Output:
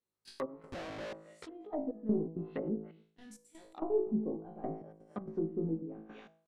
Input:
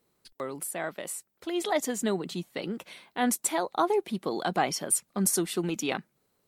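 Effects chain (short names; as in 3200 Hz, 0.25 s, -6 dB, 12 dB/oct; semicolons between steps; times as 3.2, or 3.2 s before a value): 4.73–5.21 resonator 260 Hz, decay 0.85 s, mix 40%; in parallel at 0 dB: compressor 16:1, threshold -40 dBFS, peak gain reduction 21 dB; on the sum: sample leveller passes 2; 2.79–3.71 passive tone stack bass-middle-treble 10-0-1; resonator 54 Hz, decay 0.48 s, harmonics all, mix 100%; echo 0.273 s -21.5 dB; treble ducked by the level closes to 480 Hz, closed at -30 dBFS; step gate "...xx..xx.xxxxxx" 165 bpm -12 dB; 0.72–1.13 Schmitt trigger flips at -57.5 dBFS; treble ducked by the level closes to 670 Hz, closed at -32 dBFS; de-hum 162.5 Hz, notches 7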